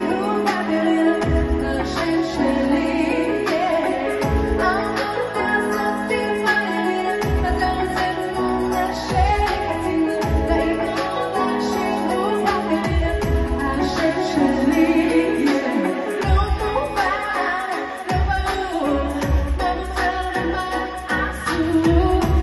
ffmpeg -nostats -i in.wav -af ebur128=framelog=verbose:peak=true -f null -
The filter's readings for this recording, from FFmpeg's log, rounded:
Integrated loudness:
  I:         -20.3 LUFS
  Threshold: -30.3 LUFS
Loudness range:
  LRA:         2.6 LU
  Threshold: -40.3 LUFS
  LRA low:   -21.6 LUFS
  LRA high:  -19.0 LUFS
True peak:
  Peak:       -4.0 dBFS